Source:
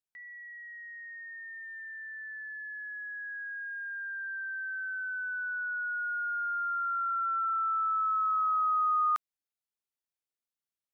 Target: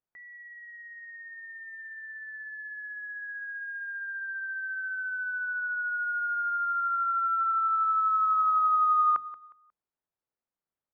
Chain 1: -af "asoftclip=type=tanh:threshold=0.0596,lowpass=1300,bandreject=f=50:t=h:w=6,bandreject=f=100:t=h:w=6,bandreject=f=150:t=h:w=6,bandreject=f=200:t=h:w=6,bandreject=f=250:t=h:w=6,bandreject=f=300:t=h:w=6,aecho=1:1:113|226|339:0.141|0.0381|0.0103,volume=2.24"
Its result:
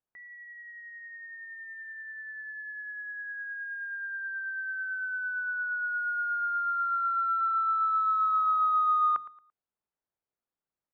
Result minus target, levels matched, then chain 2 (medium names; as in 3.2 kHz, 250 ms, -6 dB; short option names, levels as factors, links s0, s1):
saturation: distortion +12 dB; echo 67 ms early
-af "asoftclip=type=tanh:threshold=0.133,lowpass=1300,bandreject=f=50:t=h:w=6,bandreject=f=100:t=h:w=6,bandreject=f=150:t=h:w=6,bandreject=f=200:t=h:w=6,bandreject=f=250:t=h:w=6,bandreject=f=300:t=h:w=6,aecho=1:1:180|360|540:0.141|0.0381|0.0103,volume=2.24"